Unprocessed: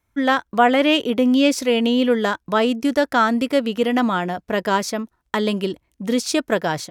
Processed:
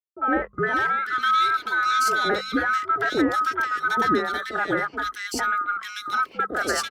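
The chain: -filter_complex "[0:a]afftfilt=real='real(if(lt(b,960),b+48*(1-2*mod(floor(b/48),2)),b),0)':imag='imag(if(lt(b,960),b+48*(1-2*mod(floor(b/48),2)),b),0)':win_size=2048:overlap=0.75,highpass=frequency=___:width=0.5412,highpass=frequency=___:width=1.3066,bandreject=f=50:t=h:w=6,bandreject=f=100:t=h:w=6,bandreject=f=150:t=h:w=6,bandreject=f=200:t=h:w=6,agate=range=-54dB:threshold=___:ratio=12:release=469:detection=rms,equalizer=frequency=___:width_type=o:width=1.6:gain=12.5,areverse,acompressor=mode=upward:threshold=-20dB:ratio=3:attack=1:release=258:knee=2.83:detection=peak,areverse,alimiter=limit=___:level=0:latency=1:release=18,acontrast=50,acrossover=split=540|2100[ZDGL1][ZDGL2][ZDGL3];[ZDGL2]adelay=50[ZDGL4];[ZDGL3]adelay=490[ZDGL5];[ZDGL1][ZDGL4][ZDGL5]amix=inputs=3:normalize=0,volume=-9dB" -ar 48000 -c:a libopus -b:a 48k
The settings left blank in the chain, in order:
61, 61, -39dB, 380, -8dB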